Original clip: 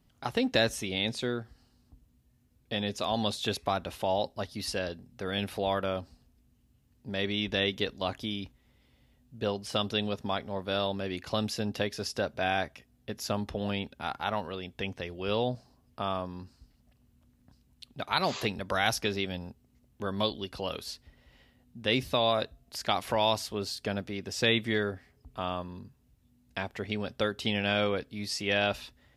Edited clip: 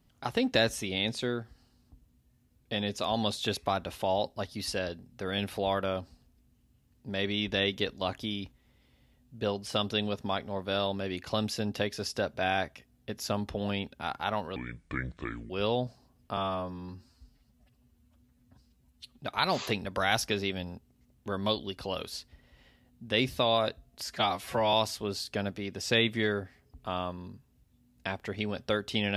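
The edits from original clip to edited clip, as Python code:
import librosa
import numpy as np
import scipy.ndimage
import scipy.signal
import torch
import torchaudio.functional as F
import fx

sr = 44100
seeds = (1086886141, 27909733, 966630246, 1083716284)

y = fx.edit(x, sr, fx.speed_span(start_s=14.56, length_s=0.62, speed=0.66),
    fx.stretch_span(start_s=16.05, length_s=1.88, factor=1.5),
    fx.stretch_span(start_s=22.78, length_s=0.46, factor=1.5), tone=tone)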